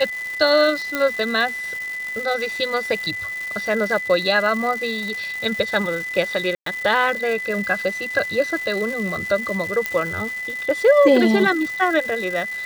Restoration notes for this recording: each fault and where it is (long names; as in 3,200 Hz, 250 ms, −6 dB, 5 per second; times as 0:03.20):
surface crackle 560 per second −28 dBFS
whistle 2,000 Hz −26 dBFS
0:00.95: click −7 dBFS
0:06.55–0:06.66: drop-out 113 ms
0:09.86: click −7 dBFS